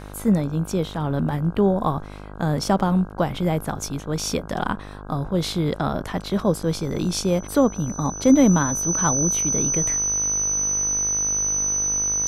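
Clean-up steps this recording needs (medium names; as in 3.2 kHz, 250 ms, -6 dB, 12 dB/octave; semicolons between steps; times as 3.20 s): de-hum 50.5 Hz, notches 32; band-stop 6 kHz, Q 30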